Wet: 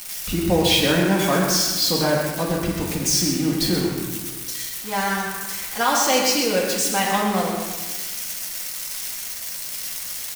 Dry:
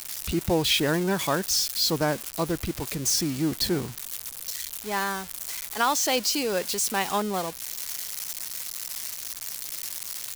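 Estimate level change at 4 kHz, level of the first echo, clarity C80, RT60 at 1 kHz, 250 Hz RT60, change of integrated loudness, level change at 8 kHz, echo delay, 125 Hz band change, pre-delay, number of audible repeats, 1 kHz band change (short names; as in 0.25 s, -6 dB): +5.0 dB, -6.5 dB, 2.0 dB, 1.3 s, 1.5 s, +5.5 dB, +4.5 dB, 0.128 s, +6.5 dB, 4 ms, 1, +5.5 dB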